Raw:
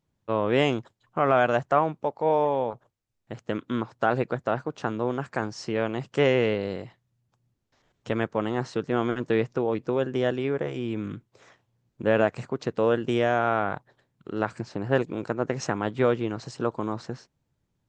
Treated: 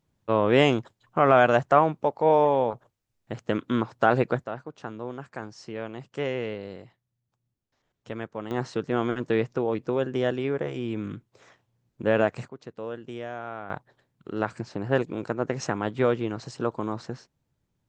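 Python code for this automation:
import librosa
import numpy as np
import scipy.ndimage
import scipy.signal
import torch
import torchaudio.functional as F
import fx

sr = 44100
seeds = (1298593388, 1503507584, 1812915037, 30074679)

y = fx.gain(x, sr, db=fx.steps((0.0, 3.0), (4.44, -8.0), (8.51, -0.5), (12.48, -12.5), (13.7, -0.5)))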